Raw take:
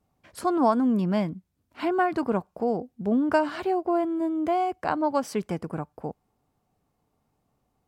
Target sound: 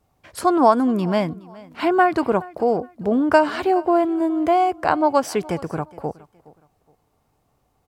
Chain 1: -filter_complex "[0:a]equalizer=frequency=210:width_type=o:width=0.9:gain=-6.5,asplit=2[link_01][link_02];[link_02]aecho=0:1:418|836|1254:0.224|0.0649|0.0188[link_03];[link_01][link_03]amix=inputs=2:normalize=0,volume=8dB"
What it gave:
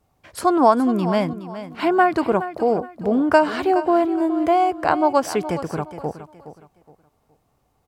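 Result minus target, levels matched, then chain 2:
echo-to-direct +8.5 dB
-filter_complex "[0:a]equalizer=frequency=210:width_type=o:width=0.9:gain=-6.5,asplit=2[link_01][link_02];[link_02]aecho=0:1:418|836:0.0841|0.0244[link_03];[link_01][link_03]amix=inputs=2:normalize=0,volume=8dB"

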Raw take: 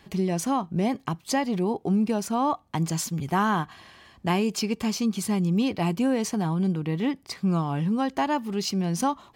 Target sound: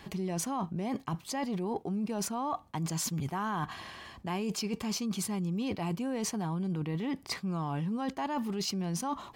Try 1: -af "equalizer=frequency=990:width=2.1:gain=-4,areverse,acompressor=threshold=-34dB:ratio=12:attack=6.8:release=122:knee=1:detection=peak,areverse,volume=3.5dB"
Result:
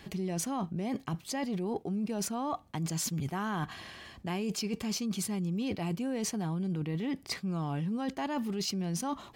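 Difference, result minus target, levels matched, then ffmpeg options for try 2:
1,000 Hz band −2.5 dB
-af "equalizer=frequency=990:width=2.1:gain=2.5,areverse,acompressor=threshold=-34dB:ratio=12:attack=6.8:release=122:knee=1:detection=peak,areverse,volume=3.5dB"

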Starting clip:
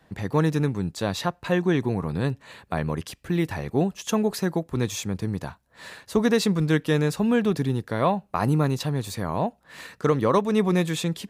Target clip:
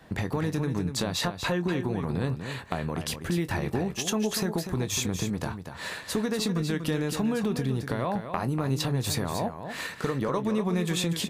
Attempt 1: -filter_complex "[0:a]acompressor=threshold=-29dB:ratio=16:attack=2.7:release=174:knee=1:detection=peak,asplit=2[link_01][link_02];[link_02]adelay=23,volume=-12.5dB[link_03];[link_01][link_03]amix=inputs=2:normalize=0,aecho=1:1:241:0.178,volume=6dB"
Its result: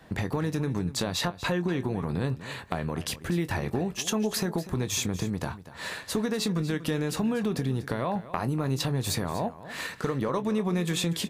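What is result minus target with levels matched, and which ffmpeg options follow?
echo-to-direct −6.5 dB
-filter_complex "[0:a]acompressor=threshold=-29dB:ratio=16:attack=2.7:release=174:knee=1:detection=peak,asplit=2[link_01][link_02];[link_02]adelay=23,volume=-12.5dB[link_03];[link_01][link_03]amix=inputs=2:normalize=0,aecho=1:1:241:0.376,volume=6dB"

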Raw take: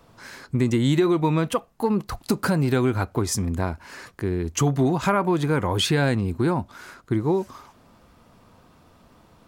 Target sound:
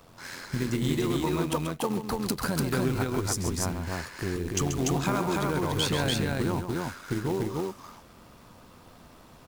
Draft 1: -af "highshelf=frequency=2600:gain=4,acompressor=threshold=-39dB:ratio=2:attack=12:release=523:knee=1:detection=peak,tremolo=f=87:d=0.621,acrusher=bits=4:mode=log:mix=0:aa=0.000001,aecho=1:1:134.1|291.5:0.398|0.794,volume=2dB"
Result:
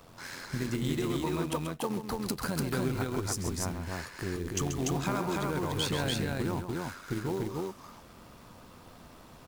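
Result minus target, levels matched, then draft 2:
downward compressor: peak gain reduction +4 dB
-af "highshelf=frequency=2600:gain=4,acompressor=threshold=-31dB:ratio=2:attack=12:release=523:knee=1:detection=peak,tremolo=f=87:d=0.621,acrusher=bits=4:mode=log:mix=0:aa=0.000001,aecho=1:1:134.1|291.5:0.398|0.794,volume=2dB"

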